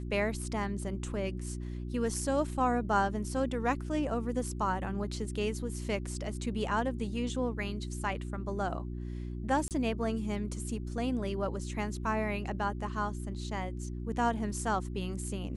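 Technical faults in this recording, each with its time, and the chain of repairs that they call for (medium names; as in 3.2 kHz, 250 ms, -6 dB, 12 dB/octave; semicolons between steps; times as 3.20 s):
hum 60 Hz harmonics 6 -38 dBFS
9.68–9.71 s: dropout 28 ms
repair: de-hum 60 Hz, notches 6; interpolate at 9.68 s, 28 ms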